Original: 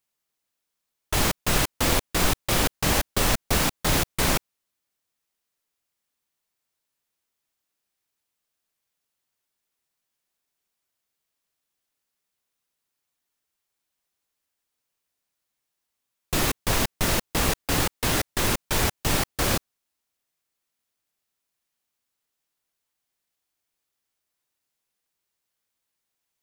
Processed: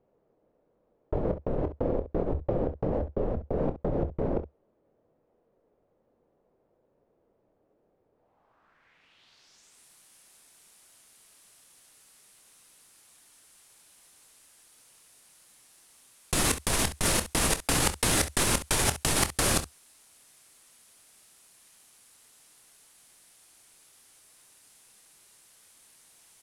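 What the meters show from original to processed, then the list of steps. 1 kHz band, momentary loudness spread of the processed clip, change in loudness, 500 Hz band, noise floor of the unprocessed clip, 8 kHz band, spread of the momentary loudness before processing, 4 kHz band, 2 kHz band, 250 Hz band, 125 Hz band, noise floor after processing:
−5.5 dB, 7 LU, −3.5 dB, −0.5 dB, −82 dBFS, −1.0 dB, 2 LU, −5.0 dB, −5.5 dB, −2.5 dB, −4.0 dB, −72 dBFS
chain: parametric band 72 Hz −5 dB 0.28 octaves
compressor whose output falls as the input rises −35 dBFS, ratio −1
low-pass filter sweep 510 Hz → 10,000 Hz, 0:08.12–0:09.84
on a send: ambience of single reflections 26 ms −11.5 dB, 67 ms −13.5 dB
on the sum: level +8.5 dB

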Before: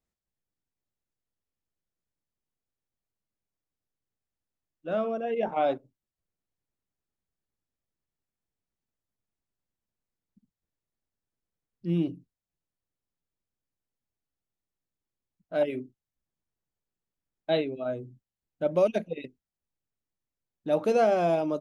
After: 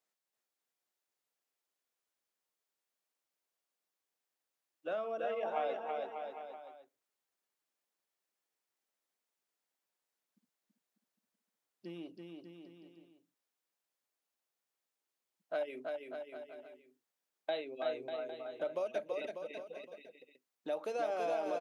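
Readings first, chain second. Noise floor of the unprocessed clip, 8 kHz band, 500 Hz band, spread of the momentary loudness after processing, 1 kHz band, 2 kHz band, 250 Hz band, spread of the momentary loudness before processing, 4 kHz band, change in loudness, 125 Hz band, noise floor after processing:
below −85 dBFS, can't be measured, −9.5 dB, 18 LU, −8.0 dB, −5.5 dB, −16.0 dB, 16 LU, −7.0 dB, −11.5 dB, −24.5 dB, below −85 dBFS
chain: downward compressor 6 to 1, threshold −35 dBFS, peak gain reduction 16 dB
high-pass filter 510 Hz 12 dB per octave
bouncing-ball delay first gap 330 ms, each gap 0.8×, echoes 5
level +2.5 dB

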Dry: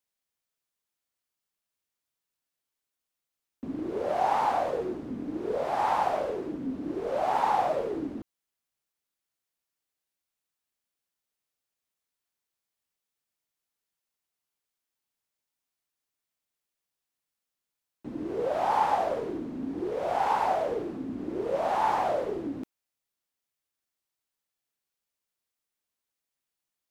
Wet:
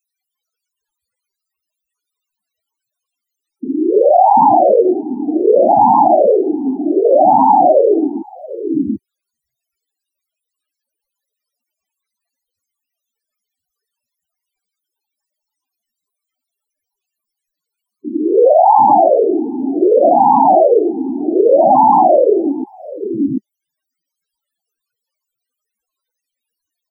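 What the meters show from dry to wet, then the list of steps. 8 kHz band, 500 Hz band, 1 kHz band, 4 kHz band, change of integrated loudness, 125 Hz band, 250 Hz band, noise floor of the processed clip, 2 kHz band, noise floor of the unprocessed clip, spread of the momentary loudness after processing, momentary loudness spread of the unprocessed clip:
can't be measured, +19.5 dB, +17.0 dB, below −25 dB, +18.0 dB, +11.0 dB, +19.0 dB, −82 dBFS, below −25 dB, below −85 dBFS, 14 LU, 11 LU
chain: spectral peaks only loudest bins 8
multiband delay without the direct sound highs, lows 740 ms, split 300 Hz
boost into a limiter +25 dB
level −1 dB

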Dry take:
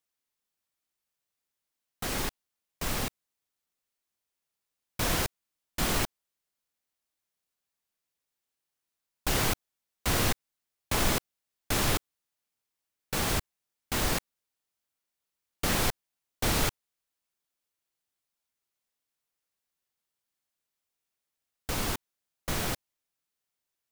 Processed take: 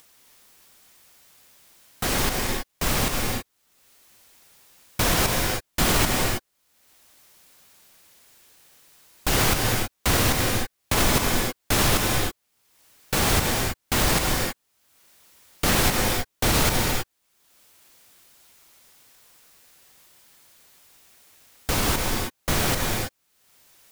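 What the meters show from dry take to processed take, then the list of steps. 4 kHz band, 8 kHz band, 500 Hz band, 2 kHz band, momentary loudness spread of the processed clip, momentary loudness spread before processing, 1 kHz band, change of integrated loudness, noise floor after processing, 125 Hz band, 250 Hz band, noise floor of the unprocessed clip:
+8.5 dB, +9.0 dB, +9.0 dB, +9.0 dB, 9 LU, 10 LU, +9.0 dB, +7.5 dB, −73 dBFS, +9.0 dB, +8.5 dB, below −85 dBFS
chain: upward compression, threshold −47 dBFS
brickwall limiter −18 dBFS, peak gain reduction 5 dB
reverb whose tail is shaped and stops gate 350 ms rising, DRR 2 dB
level +8 dB

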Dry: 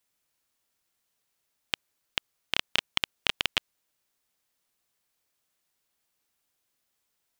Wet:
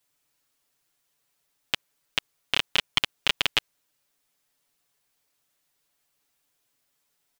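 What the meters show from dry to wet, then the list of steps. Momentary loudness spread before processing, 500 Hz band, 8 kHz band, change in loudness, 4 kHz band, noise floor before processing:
8 LU, +3.5 dB, +3.5 dB, +3.5 dB, +3.5 dB, −79 dBFS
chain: comb filter 7 ms, depth 69%
level +2 dB

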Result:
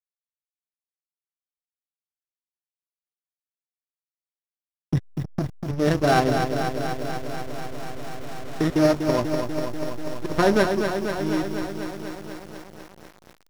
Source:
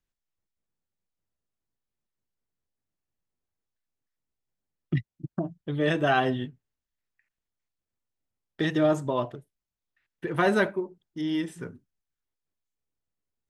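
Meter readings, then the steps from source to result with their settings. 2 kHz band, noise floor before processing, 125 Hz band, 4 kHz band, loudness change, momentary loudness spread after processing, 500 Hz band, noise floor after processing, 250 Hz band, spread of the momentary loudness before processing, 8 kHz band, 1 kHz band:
+1.5 dB, below −85 dBFS, +5.5 dB, +4.5 dB, +3.0 dB, 17 LU, +5.5 dB, below −85 dBFS, +5.0 dB, 14 LU, can't be measured, +5.0 dB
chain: samples sorted by size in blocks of 8 samples
high-shelf EQ 6,000 Hz −10 dB
slack as between gear wheels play −23 dBFS
feedback echo at a low word length 244 ms, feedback 80%, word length 8 bits, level −6 dB
level +5.5 dB

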